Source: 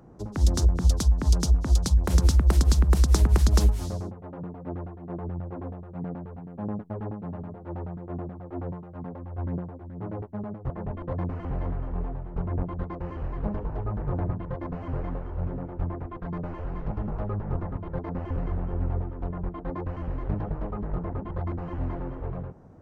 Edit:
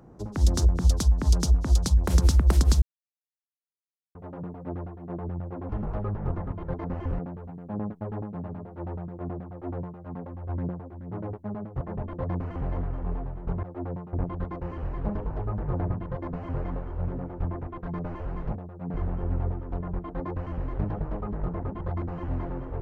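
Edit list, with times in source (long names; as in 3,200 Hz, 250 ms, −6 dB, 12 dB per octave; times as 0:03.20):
0:02.82–0:04.15: silence
0:05.69–0:06.08: swap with 0:16.94–0:18.44
0:08.39–0:08.89: duplicate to 0:12.52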